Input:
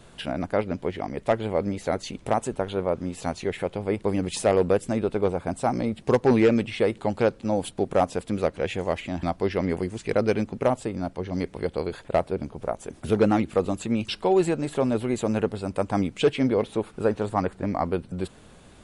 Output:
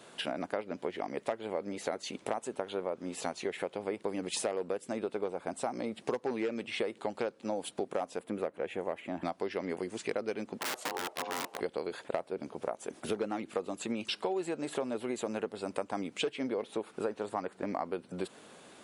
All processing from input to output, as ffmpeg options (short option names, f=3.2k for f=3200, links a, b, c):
-filter_complex "[0:a]asettb=1/sr,asplit=3[a][b][c];[a]atrim=end=8.194[d];[b]atrim=start=8.19:end=9.25,asetpts=PTS-STARTPTS,afade=t=in:d=0.004:c=qsin,afade=t=out:st=1.056:d=0.004:c=qsin,equalizer=f=5.3k:w=0.77:g=-14.5,asoftclip=type=hard:threshold=-13.5dB[e];[c]atrim=start=9.246[f];[d][e]acrossfade=d=0.004:c1=hsin:c2=qsin[g];[g][f]acrossfade=d=0.004:c1=qsin:c2=hsin,asettb=1/sr,asplit=3[h][i][j];[h]atrim=end=10.594[k];[i]atrim=start=10.59:end=11.61,asetpts=PTS-STARTPTS,afade=t=in:d=0.004:c=qsin,afade=t=out:st=1.016:d=0.004:c=qsin,aeval=exprs='(mod(15*val(0)+1,2)-1)/15':c=same,aeval=exprs='val(0)*sin(2*PI*620*n/s)':c=same[l];[j]atrim=start=11.606[m];[k][l]acrossfade=d=0.004:c1=hsin:c2=qsin[n];[n][m]acrossfade=d=0.004:c1=qsin:c2=hsin,highpass=290,acompressor=threshold=-31dB:ratio=6"